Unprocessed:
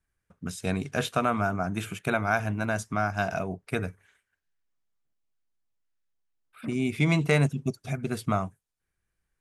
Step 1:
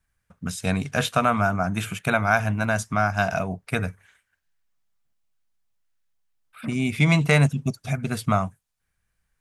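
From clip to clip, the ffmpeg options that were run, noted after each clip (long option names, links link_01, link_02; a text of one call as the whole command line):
ffmpeg -i in.wav -af "equalizer=frequency=360:width=2:gain=-9,volume=6dB" out.wav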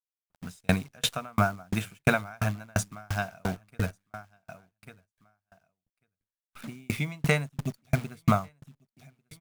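ffmpeg -i in.wav -af "acrusher=bits=7:dc=4:mix=0:aa=0.000001,aecho=1:1:1145|2290:0.1|0.018,aeval=exprs='val(0)*pow(10,-40*if(lt(mod(2.9*n/s,1),2*abs(2.9)/1000),1-mod(2.9*n/s,1)/(2*abs(2.9)/1000),(mod(2.9*n/s,1)-2*abs(2.9)/1000)/(1-2*abs(2.9)/1000))/20)':channel_layout=same,volume=4dB" out.wav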